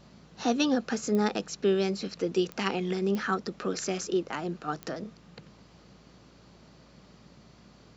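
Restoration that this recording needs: de-click; de-hum 56 Hz, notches 10

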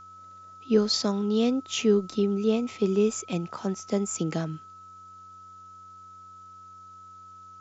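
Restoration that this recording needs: de-hum 93.1 Hz, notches 10; band-stop 1.3 kHz, Q 30; expander -40 dBFS, range -21 dB

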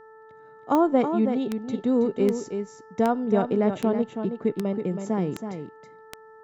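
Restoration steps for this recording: de-click; de-hum 440 Hz, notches 4; inverse comb 324 ms -7.5 dB

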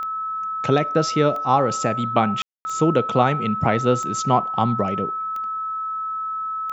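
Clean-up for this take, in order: de-click; band-stop 1.3 kHz, Q 30; room tone fill 2.42–2.65 s

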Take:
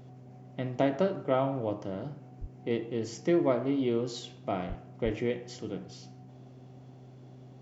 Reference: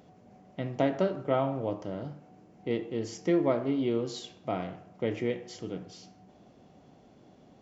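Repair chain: de-hum 127.8 Hz, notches 3; de-plosive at 2.40/4.68/5.04 s

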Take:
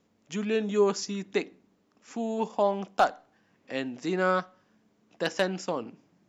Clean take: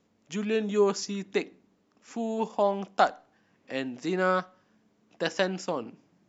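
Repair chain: clip repair -12.5 dBFS

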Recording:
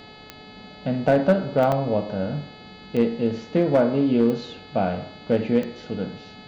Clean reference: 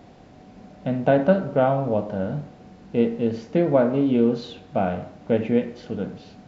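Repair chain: clip repair -10.5 dBFS; de-click; de-hum 429.4 Hz, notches 11; interpolate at 1.72 s, 3.4 ms

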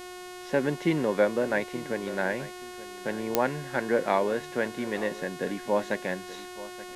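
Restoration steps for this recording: de-click; de-hum 362 Hz, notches 35; expander -34 dBFS, range -21 dB; inverse comb 879 ms -17 dB

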